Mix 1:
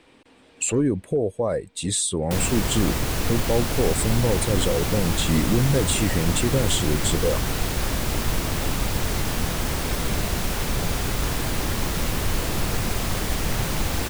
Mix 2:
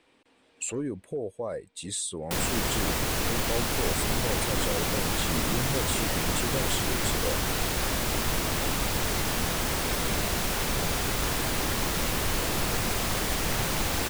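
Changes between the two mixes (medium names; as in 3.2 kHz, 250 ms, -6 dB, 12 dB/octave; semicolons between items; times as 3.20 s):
speech -8.0 dB; master: add bass shelf 240 Hz -7 dB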